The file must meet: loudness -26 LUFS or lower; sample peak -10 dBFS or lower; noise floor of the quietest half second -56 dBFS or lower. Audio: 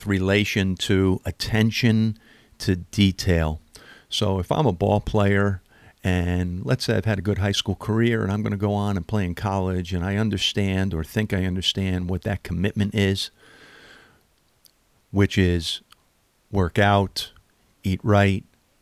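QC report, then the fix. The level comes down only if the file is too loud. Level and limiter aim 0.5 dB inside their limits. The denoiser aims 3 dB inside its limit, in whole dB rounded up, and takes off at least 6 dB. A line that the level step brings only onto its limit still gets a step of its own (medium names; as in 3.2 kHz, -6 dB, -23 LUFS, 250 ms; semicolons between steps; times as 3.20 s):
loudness -23.0 LUFS: fail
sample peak -5.5 dBFS: fail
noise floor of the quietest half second -64 dBFS: pass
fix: trim -3.5 dB; peak limiter -10.5 dBFS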